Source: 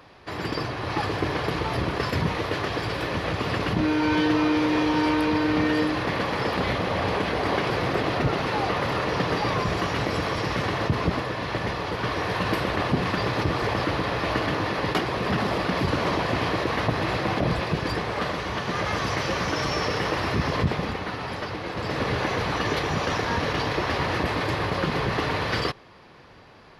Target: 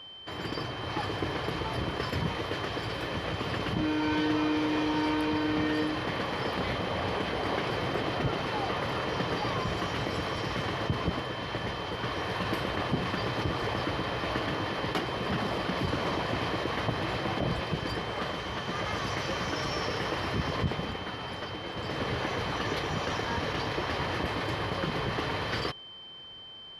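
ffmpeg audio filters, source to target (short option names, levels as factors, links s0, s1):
-af "aeval=exprs='val(0)+0.0126*sin(2*PI*3100*n/s)':c=same,volume=0.501"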